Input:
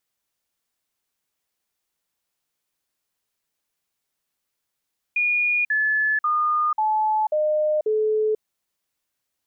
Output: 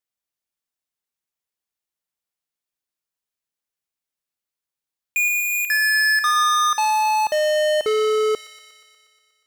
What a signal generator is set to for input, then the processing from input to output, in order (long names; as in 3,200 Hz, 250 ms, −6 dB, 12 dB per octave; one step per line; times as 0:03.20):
stepped sweep 2,440 Hz down, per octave 2, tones 6, 0.49 s, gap 0.05 s −18 dBFS
leveller curve on the samples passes 5
on a send: delay with a high-pass on its return 120 ms, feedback 69%, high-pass 2,000 Hz, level −8.5 dB